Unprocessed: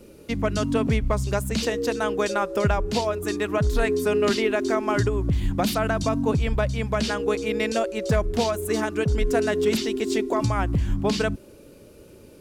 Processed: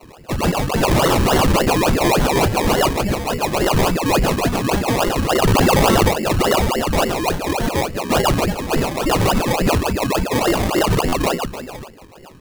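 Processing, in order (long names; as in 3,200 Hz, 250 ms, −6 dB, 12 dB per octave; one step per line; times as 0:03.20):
multi-voice chorus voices 4, 0.27 Hz, delay 28 ms, depth 2.4 ms
single-tap delay 489 ms −12.5 dB
pitch vibrato 1.6 Hz 43 cents
four-comb reverb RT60 0.67 s, combs from 30 ms, DRR 18 dB
voice inversion scrambler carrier 2,900 Hz
0:00.83–0:02.60: spectral tilt +4 dB per octave
sample-and-hold swept by an LFO 25×, swing 60% 3.5 Hz
wave folding −17.5 dBFS
buffer that repeats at 0:11.08, samples 512, times 3
0:05.42–0:06.09: envelope flattener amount 100%
level +7.5 dB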